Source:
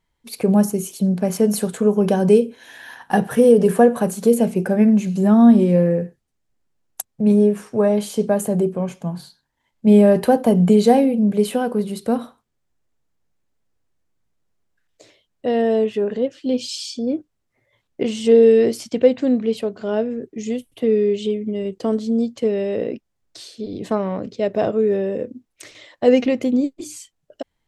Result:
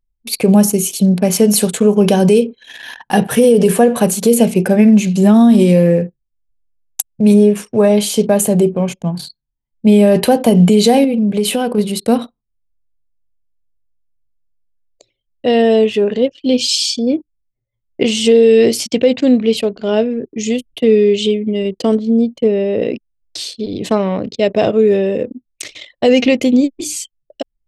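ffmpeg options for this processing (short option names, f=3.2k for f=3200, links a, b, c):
-filter_complex "[0:a]asettb=1/sr,asplit=3[a][b][c];[a]atrim=end=5.344[d];[b]atrim=start=5.34:end=7.34,asetpts=PTS-STARTPTS,afade=t=in:d=0.004:c=qsin,afade=t=out:st=1.996:d=0.004:c=qsin,highshelf=f=5.5k:g=7.5[e];[c]atrim=start=7.336[f];[d][e]acrossfade=d=0.004:c1=hsin:c2=qsin[g];[g][f]acrossfade=d=0.004:c1=qsin:c2=hsin,asettb=1/sr,asplit=3[h][i][j];[h]atrim=end=11.044[k];[i]atrim=start=11.04:end=11.78,asetpts=PTS-STARTPTS,afade=t=in:d=0.004:c=qsin,afade=t=out:st=0.736:d=0.004:c=qsin,acompressor=threshold=-19dB:ratio=3:attack=3.2:release=140:knee=1:detection=peak[l];[j]atrim=start=11.776[m];[k][l]acrossfade=d=0.004:c1=hsin:c2=qsin[n];[n][m]acrossfade=d=0.004:c1=qsin:c2=hsin,asettb=1/sr,asplit=3[o][p][q];[o]atrim=end=21.954[r];[p]atrim=start=21.95:end=22.82,asetpts=PTS-STARTPTS,afade=t=in:d=0.004:c=qsin,afade=t=out:st=0.866:d=0.004:c=qsin,equalizer=f=6.2k:w=0.33:g=-11[s];[q]atrim=start=22.816[t];[r][s]acrossfade=d=0.004:c1=hsin:c2=qsin[u];[u][t]acrossfade=d=0.004:c1=qsin:c2=hsin,highshelf=f=2k:t=q:w=1.5:g=6,anlmdn=1.58,alimiter=level_in=8dB:limit=-1dB:release=50:level=0:latency=1,volume=-1dB"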